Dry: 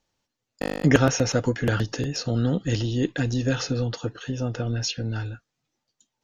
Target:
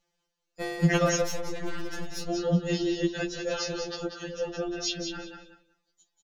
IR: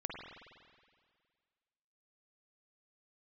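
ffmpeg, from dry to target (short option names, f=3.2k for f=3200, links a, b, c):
-filter_complex "[0:a]aecho=1:1:188|376|564:0.447|0.0804|0.0145,asettb=1/sr,asplit=3[a][b][c];[a]atrim=end=1.224[d];[b]atrim=start=1.22:end=2.3,asetpts=PTS-STARTPTS,afade=t=in:d=0.004:c=qsin,afade=t=out:st=1.076:d=0.004:c=qsin,aeval=exprs='(tanh(25.1*val(0)+0.7)-tanh(0.7))/25.1':c=same[e];[c]atrim=start=2.296[f];[d][e]acrossfade=d=0.004:c1=hsin:c2=qsin[g];[g][f]acrossfade=d=0.004:c1=qsin:c2=hsin,afftfilt=real='re*2.83*eq(mod(b,8),0)':imag='im*2.83*eq(mod(b,8),0)':win_size=2048:overlap=0.75"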